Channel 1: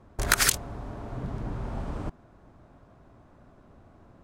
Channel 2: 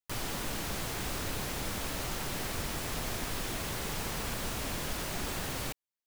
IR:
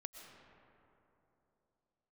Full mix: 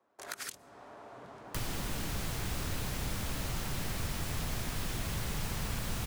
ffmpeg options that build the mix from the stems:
-filter_complex "[0:a]highpass=460,volume=-13.5dB,asplit=2[a][b];[b]volume=-16.5dB[c];[1:a]lowshelf=f=150:g=-11,adelay=1450,volume=1dB[d];[2:a]atrim=start_sample=2205[e];[c][e]afir=irnorm=-1:irlink=0[f];[a][d][f]amix=inputs=3:normalize=0,dynaudnorm=f=220:g=3:m=8dB,asubboost=boost=5:cutoff=130,acrossover=split=110|300[g][h][i];[g]acompressor=threshold=-36dB:ratio=4[j];[h]acompressor=threshold=-41dB:ratio=4[k];[i]acompressor=threshold=-41dB:ratio=4[l];[j][k][l]amix=inputs=3:normalize=0"

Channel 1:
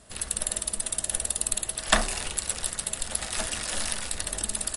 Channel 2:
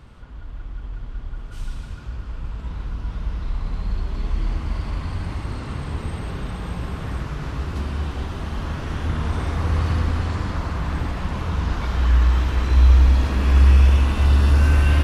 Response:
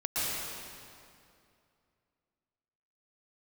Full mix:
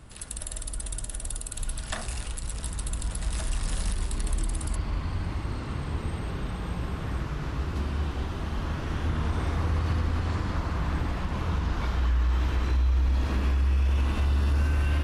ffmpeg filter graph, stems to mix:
-filter_complex "[0:a]volume=-8dB[a];[1:a]equalizer=f=330:w=7.7:g=3,volume=-3.5dB[b];[a][b]amix=inputs=2:normalize=0,alimiter=limit=-18dB:level=0:latency=1:release=92"

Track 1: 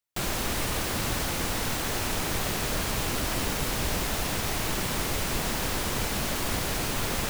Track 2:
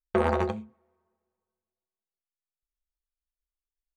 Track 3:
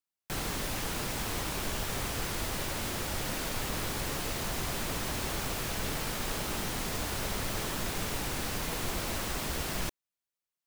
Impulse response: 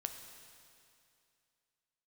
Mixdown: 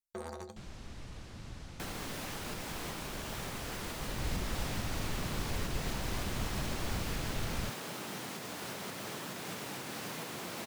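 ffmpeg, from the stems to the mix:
-filter_complex "[0:a]lowpass=6.3k,bass=f=250:g=10,treble=f=4k:g=4,adelay=400,volume=-13.5dB,afade=t=in:st=3.93:d=0.37:silence=0.334965[a];[1:a]aexciter=amount=10.2:drive=4.6:freq=4.1k,volume=-18.5dB[b];[2:a]highpass=f=130:w=0.5412,highpass=f=130:w=1.3066,alimiter=level_in=4dB:limit=-24dB:level=0:latency=1:release=427,volume=-4dB,adelay=1500,volume=-2dB[c];[a][b][c]amix=inputs=3:normalize=0,highshelf=f=6k:g=-4"

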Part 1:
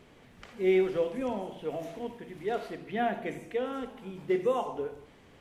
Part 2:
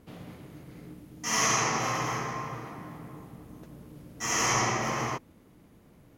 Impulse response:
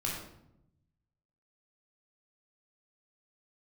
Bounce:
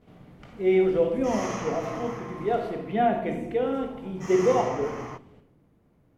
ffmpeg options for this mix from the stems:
-filter_complex "[0:a]equalizer=f=1.6k:t=o:w=0.79:g=-4,agate=range=-33dB:threshold=-53dB:ratio=3:detection=peak,dynaudnorm=f=180:g=7:m=6dB,volume=-2.5dB,asplit=2[a][b];[b]volume=-5.5dB[c];[1:a]volume=-6.5dB,asplit=2[d][e];[e]volume=-22dB[f];[2:a]atrim=start_sample=2205[g];[c][f]amix=inputs=2:normalize=0[h];[h][g]afir=irnorm=-1:irlink=0[i];[a][d][i]amix=inputs=3:normalize=0,highshelf=f=2.7k:g=-11"

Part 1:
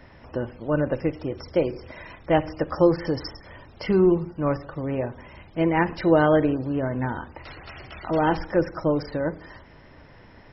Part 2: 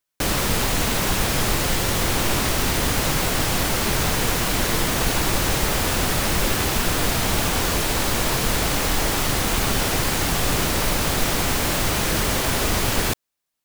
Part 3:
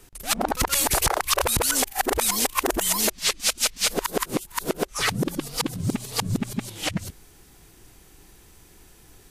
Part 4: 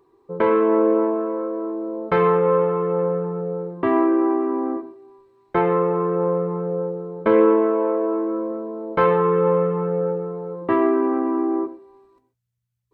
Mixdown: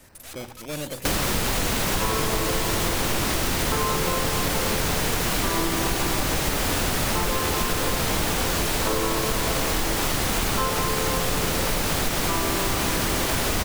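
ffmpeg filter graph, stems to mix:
-filter_complex "[0:a]acrusher=samples=11:mix=1:aa=0.000001:lfo=1:lforange=11:lforate=0.52,asoftclip=type=tanh:threshold=-24dB,adynamicequalizer=threshold=0.00562:dfrequency=2000:dqfactor=0.7:tfrequency=2000:tqfactor=0.7:attack=5:release=100:ratio=0.375:range=2.5:mode=boostabove:tftype=highshelf,volume=-4.5dB[a];[1:a]adelay=850,volume=2.5dB[b];[2:a]highpass=1.1k,acompressor=threshold=-36dB:ratio=3,aeval=exprs='(tanh(112*val(0)+0.55)-tanh(0.55))/112':c=same,volume=2.5dB[c];[3:a]equalizer=f=1.1k:t=o:w=0.77:g=10.5,adelay=1600,volume=-9dB[d];[a][b][c][d]amix=inputs=4:normalize=0,bandreject=f=60:t=h:w=6,bandreject=f=120:t=h:w=6,acompressor=threshold=-20dB:ratio=6"

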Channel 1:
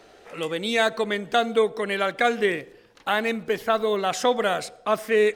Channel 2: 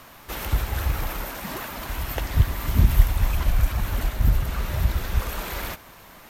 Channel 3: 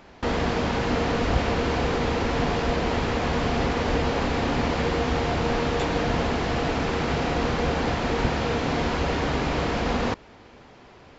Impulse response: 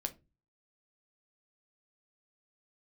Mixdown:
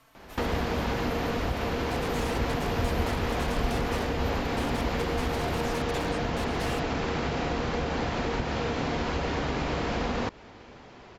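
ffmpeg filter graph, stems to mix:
-filter_complex "[0:a]acompressor=threshold=-23dB:ratio=6,aeval=exprs='(mod(12.6*val(0)+1,2)-1)/12.6':c=same,adelay=1500,volume=-13.5dB[a];[1:a]asplit=2[b][c];[c]adelay=4,afreqshift=-0.82[d];[b][d]amix=inputs=2:normalize=1,volume=-10.5dB[e];[2:a]acompressor=threshold=-26dB:ratio=6,adelay=150,volume=0.5dB[f];[a][e][f]amix=inputs=3:normalize=0,lowpass=12k"

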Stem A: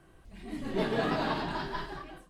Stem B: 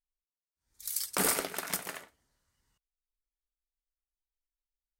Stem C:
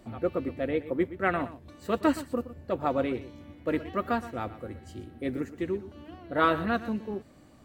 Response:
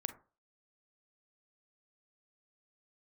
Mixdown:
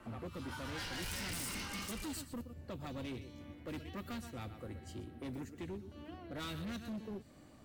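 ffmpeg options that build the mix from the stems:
-filter_complex "[0:a]aeval=exprs='val(0)*sin(2*PI*1200*n/s)':c=same,dynaudnorm=f=170:g=3:m=4dB,volume=1.5dB[a];[1:a]bandpass=f=6.8k:t=q:w=0.98:csg=0,adelay=150,volume=-5dB[b];[2:a]adynamicequalizer=threshold=0.0112:dfrequency=1800:dqfactor=0.7:tfrequency=1800:tqfactor=0.7:attack=5:release=100:ratio=0.375:range=2.5:mode=boostabove:tftype=highshelf,volume=-3.5dB[c];[a][b][c]amix=inputs=3:normalize=0,acrossover=split=220|3000[d][e][f];[e]acompressor=threshold=-45dB:ratio=6[g];[d][g][f]amix=inputs=3:normalize=0,asoftclip=type=hard:threshold=-39dB"

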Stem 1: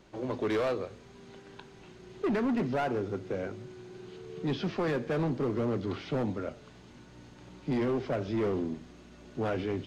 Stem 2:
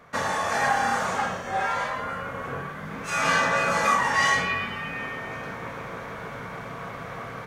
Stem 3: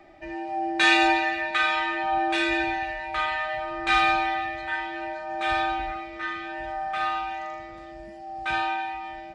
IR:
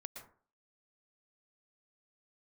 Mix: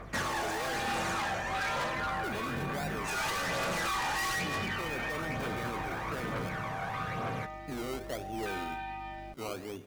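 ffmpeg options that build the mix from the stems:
-filter_complex "[0:a]lowshelf=f=340:g=-9.5,adynamicsmooth=sensitivity=8:basefreq=1.4k,acrusher=samples=20:mix=1:aa=0.000001:lfo=1:lforange=12:lforate=1.3,volume=-6dB,asplit=2[a][b];[b]volume=-6dB[c];[1:a]aeval=exprs='0.119*(abs(mod(val(0)/0.119+3,4)-2)-1)':c=same,aphaser=in_gain=1:out_gain=1:delay=1.4:decay=0.58:speed=1.1:type=triangular,asoftclip=type=hard:threshold=-28.5dB,volume=0.5dB[d];[2:a]acompressor=threshold=-32dB:ratio=2.5,aeval=exprs='val(0)+0.00708*(sin(2*PI*50*n/s)+sin(2*PI*2*50*n/s)/2+sin(2*PI*3*50*n/s)/3+sin(2*PI*4*50*n/s)/4+sin(2*PI*5*50*n/s)/5)':c=same,volume=-5dB[e];[d][e]amix=inputs=2:normalize=0,asoftclip=type=hard:threshold=-24.5dB,alimiter=level_in=3.5dB:limit=-24dB:level=0:latency=1:release=498,volume=-3.5dB,volume=0dB[f];[3:a]atrim=start_sample=2205[g];[c][g]afir=irnorm=-1:irlink=0[h];[a][f][h]amix=inputs=3:normalize=0,alimiter=level_in=3.5dB:limit=-24dB:level=0:latency=1:release=14,volume=-3.5dB"

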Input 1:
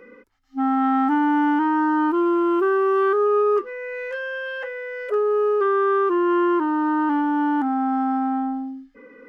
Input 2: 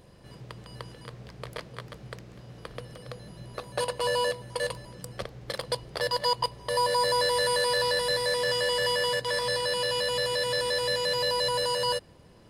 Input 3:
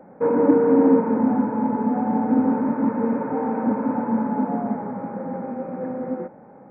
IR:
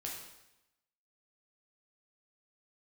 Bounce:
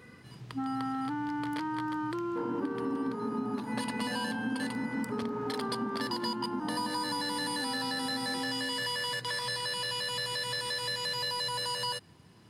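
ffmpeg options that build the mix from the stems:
-filter_complex "[0:a]acompressor=threshold=-23dB:ratio=6,volume=-5dB[a];[1:a]highpass=f=86:w=0.5412,highpass=f=86:w=1.3066,volume=-0.5dB[b];[2:a]adelay=2150,volume=-8dB[c];[a][b][c]amix=inputs=3:normalize=0,equalizer=f=540:w=2.4:g=-12.5,acompressor=threshold=-30dB:ratio=6"

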